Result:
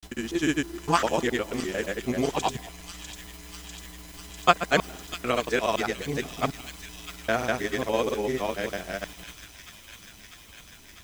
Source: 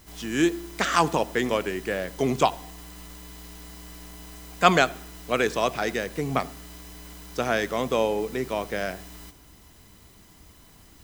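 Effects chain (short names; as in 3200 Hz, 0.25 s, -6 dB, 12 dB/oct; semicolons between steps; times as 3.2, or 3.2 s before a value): local time reversal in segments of 0.18 s; grains, grains 20/s, pitch spread up and down by 0 st; thin delay 0.648 s, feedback 78%, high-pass 3300 Hz, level -6 dB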